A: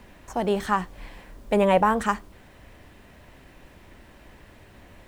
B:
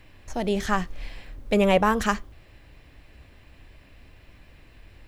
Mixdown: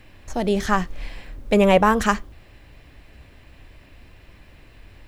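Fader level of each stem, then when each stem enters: -11.5 dB, +3.0 dB; 0.00 s, 0.00 s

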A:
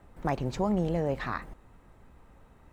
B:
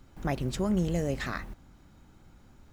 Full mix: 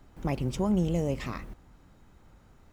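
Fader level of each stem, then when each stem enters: -5.0 dB, -3.0 dB; 0.00 s, 0.00 s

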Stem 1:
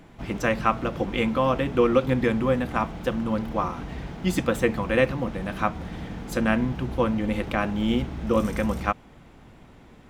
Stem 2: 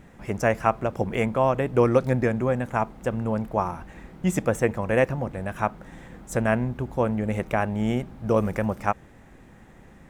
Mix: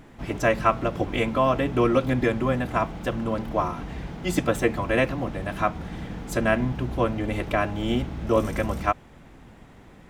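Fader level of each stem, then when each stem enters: -0.5 dB, -3.5 dB; 0.00 s, 0.00 s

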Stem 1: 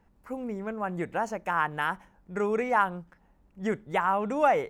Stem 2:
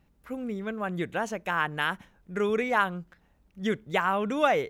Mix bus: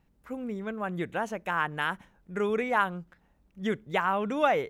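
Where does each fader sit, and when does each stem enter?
-11.5 dB, -4.0 dB; 0.00 s, 0.00 s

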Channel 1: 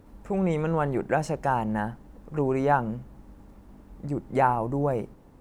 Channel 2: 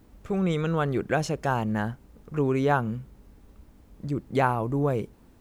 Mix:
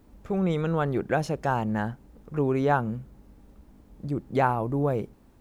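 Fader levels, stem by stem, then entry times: -9.5 dB, -3.5 dB; 0.00 s, 0.00 s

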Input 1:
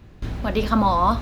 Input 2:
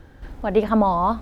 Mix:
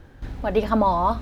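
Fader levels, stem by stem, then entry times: -9.0 dB, -1.5 dB; 0.00 s, 0.00 s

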